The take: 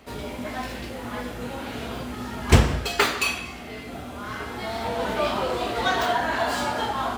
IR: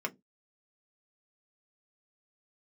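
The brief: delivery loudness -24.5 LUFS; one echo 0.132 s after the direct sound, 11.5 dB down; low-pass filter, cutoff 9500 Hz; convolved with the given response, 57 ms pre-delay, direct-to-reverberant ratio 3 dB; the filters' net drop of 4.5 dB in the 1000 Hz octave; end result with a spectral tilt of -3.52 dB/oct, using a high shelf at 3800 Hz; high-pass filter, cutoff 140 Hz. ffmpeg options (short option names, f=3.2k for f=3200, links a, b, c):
-filter_complex "[0:a]highpass=140,lowpass=9.5k,equalizer=f=1k:t=o:g=-6.5,highshelf=f=3.8k:g=5,aecho=1:1:132:0.266,asplit=2[a][b];[1:a]atrim=start_sample=2205,adelay=57[c];[b][c]afir=irnorm=-1:irlink=0,volume=-7dB[d];[a][d]amix=inputs=2:normalize=0,volume=1.5dB"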